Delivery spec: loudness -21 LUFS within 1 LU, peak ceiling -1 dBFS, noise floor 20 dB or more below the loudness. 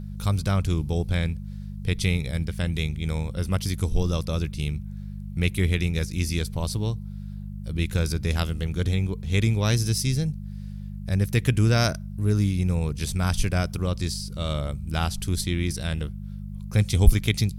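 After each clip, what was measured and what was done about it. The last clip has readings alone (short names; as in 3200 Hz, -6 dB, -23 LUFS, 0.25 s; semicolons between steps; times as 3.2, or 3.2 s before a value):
hum 50 Hz; harmonics up to 200 Hz; hum level -33 dBFS; loudness -26.0 LUFS; peak -2.5 dBFS; loudness target -21.0 LUFS
-> de-hum 50 Hz, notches 4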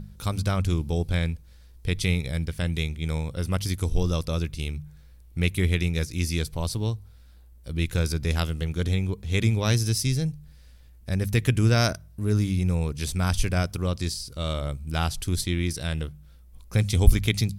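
hum none; loudness -26.5 LUFS; peak -2.5 dBFS; loudness target -21.0 LUFS
-> gain +5.5 dB; limiter -1 dBFS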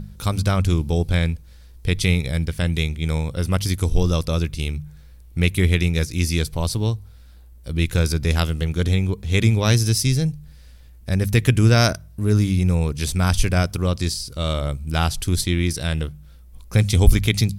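loudness -21.0 LUFS; peak -1.0 dBFS; noise floor -45 dBFS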